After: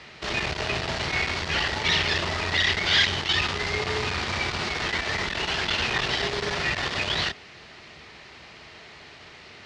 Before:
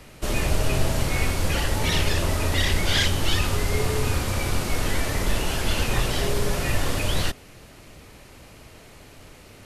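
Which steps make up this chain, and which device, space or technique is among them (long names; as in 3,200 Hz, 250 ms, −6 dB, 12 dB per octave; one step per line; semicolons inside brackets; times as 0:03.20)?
guitar amplifier (tube saturation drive 19 dB, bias 0.3; bass and treble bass −4 dB, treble +10 dB; loudspeaker in its box 90–4,300 Hz, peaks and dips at 110 Hz −8 dB, 190 Hz −3 dB, 280 Hz −9 dB, 530 Hz −8 dB, 1,900 Hz +5 dB)
level +4 dB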